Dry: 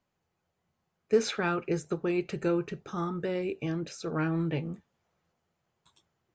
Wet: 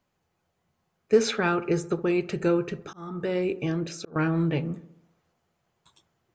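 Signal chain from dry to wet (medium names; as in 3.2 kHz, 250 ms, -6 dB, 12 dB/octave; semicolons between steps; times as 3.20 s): feedback echo behind a low-pass 66 ms, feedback 56%, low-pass 1.3 kHz, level -15 dB; 2.84–4.16 s: slow attack 390 ms; trim +4.5 dB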